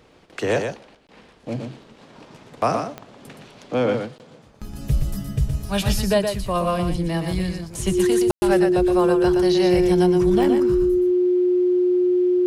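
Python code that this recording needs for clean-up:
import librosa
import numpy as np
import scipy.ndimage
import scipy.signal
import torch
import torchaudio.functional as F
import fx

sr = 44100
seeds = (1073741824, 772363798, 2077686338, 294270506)

y = fx.fix_declick_ar(x, sr, threshold=10.0)
y = fx.notch(y, sr, hz=360.0, q=30.0)
y = fx.fix_ambience(y, sr, seeds[0], print_start_s=0.94, print_end_s=1.44, start_s=8.31, end_s=8.42)
y = fx.fix_echo_inverse(y, sr, delay_ms=120, level_db=-6.0)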